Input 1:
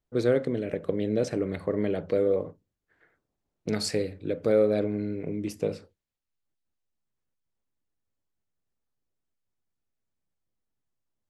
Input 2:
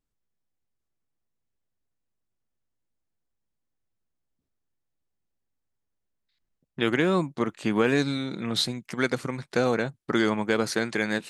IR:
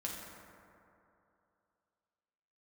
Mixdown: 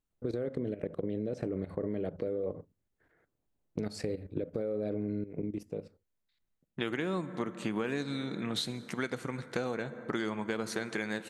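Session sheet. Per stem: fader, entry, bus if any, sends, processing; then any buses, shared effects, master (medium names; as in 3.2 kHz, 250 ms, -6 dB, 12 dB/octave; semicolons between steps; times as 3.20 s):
0.0 dB, 0.10 s, no send, tilt shelf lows +4.5 dB, about 1.1 kHz; peak limiter -16 dBFS, peak gain reduction 6.5 dB; level held to a coarse grid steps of 14 dB; auto duck -20 dB, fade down 1.60 s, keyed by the second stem
-4.0 dB, 0.00 s, send -12 dB, peaking EQ 5 kHz -5.5 dB 0.27 oct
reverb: on, RT60 2.8 s, pre-delay 5 ms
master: compression 4:1, threshold -31 dBFS, peak gain reduction 9.5 dB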